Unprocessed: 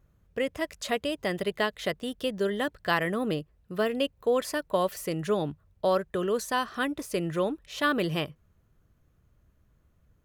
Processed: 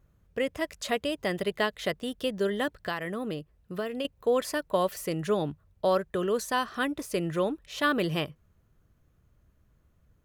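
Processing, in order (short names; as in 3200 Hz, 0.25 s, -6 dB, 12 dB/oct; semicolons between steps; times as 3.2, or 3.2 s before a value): 2.72–4.05 compressor 3:1, threshold -31 dBFS, peak gain reduction 8.5 dB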